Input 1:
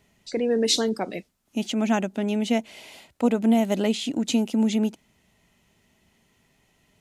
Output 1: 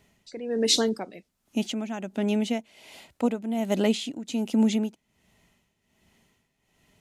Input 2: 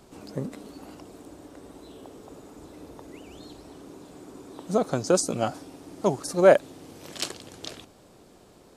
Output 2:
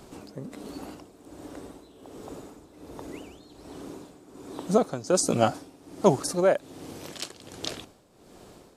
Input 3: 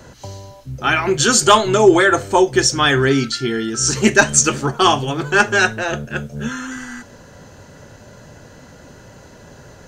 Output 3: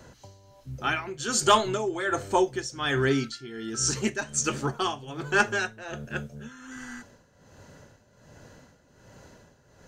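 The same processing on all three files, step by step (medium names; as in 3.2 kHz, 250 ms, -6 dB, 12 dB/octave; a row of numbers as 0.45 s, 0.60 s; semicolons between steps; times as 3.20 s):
tremolo 1.3 Hz, depth 76%; normalise loudness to -27 LUFS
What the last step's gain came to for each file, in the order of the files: +0.5 dB, +5.0 dB, -8.5 dB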